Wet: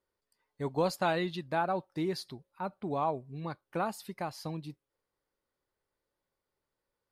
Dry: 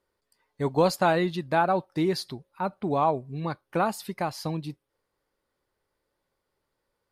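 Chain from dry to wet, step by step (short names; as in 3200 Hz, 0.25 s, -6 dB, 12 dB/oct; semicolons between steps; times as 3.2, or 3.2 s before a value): 0.94–1.47 dynamic EQ 3300 Hz, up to +5 dB, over -44 dBFS, Q 1; gain -7.5 dB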